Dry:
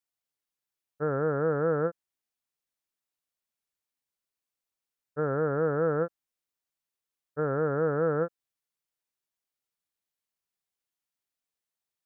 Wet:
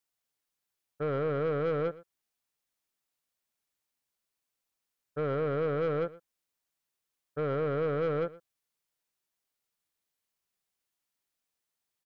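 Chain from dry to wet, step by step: in parallel at 0 dB: peak limiter -26.5 dBFS, peak gain reduction 9.5 dB; on the sum: saturation -22.5 dBFS, distortion -13 dB; delay 117 ms -19.5 dB; trim -2.5 dB

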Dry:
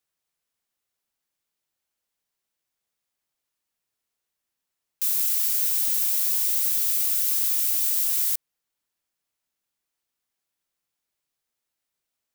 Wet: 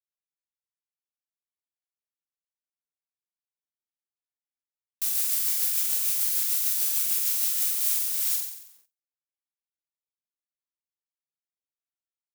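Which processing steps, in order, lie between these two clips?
rotary cabinet horn 6.7 Hz, later 0.85 Hz, at 7.29 s; flutter echo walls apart 7.8 m, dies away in 0.77 s; in parallel at -5.5 dB: companded quantiser 4-bit; on the sum: gate with hold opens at -43 dBFS; trim -4 dB

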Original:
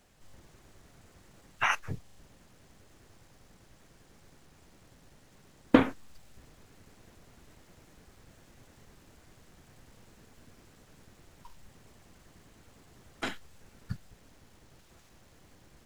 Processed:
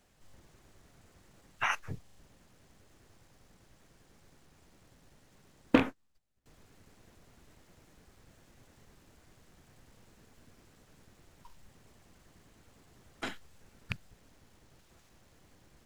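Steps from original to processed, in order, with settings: rattle on loud lows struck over -26 dBFS, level -13 dBFS; 5.88–6.46 s: upward expansion 2.5:1, over -52 dBFS; trim -3.5 dB

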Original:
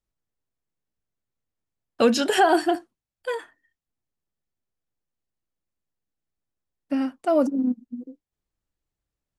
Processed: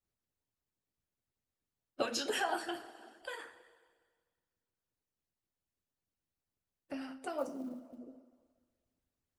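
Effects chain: two-slope reverb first 0.41 s, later 1.6 s, from -17 dB, DRR 1 dB; harmonic-percussive split harmonic -17 dB; 7.38–7.98 s: short-mantissa float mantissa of 4-bit; compression 1.5:1, threshold -49 dBFS, peak gain reduction 11 dB

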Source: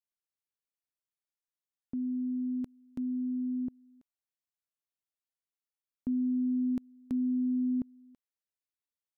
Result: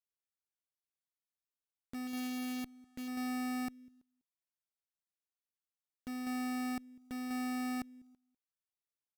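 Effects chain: 2.07–3.08 s: one-bit delta coder 64 kbps, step -55 dBFS; bass shelf 110 Hz +4.5 dB; peak limiter -31 dBFS, peak gain reduction 6 dB; short-mantissa float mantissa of 2-bit; echo from a far wall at 34 m, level -17 dB; Chebyshev shaper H 2 -24 dB, 3 -10 dB, 5 -20 dB, 6 -43 dB, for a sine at -28.5 dBFS; trim -2 dB

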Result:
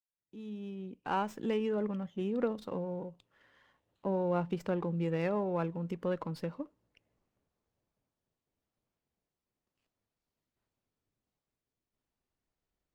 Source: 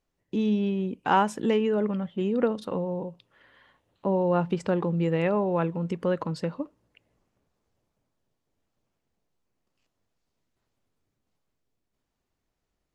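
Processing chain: fade-in on the opening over 1.72 s; sliding maximum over 3 samples; trim -7.5 dB

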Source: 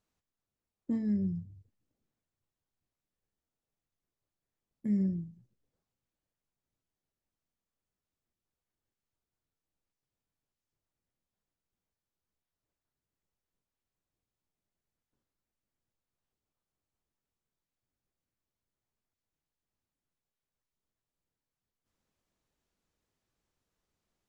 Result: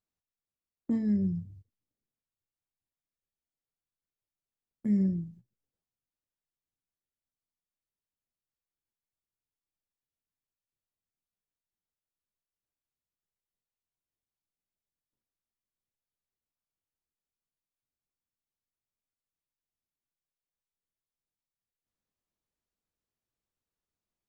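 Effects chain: gate -54 dBFS, range -13 dB; trim +3 dB

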